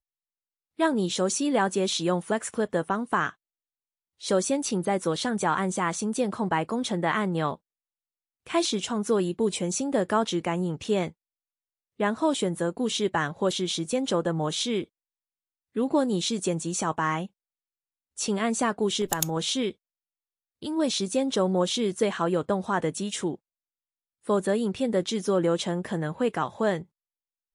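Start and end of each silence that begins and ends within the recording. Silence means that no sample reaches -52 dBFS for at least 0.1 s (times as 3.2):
3.34–4.2
7.56–8.47
11.12–11.99
14.86–15.75
17.27–18.17
19.73–20.62
23.36–24.24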